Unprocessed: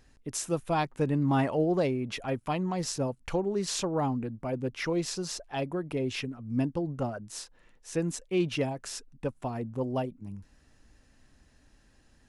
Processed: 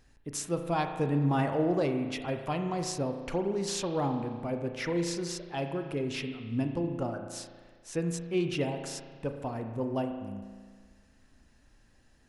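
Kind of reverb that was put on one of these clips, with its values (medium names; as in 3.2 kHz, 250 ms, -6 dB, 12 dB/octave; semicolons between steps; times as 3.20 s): spring tank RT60 1.6 s, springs 35 ms, chirp 55 ms, DRR 5.5 dB; trim -2 dB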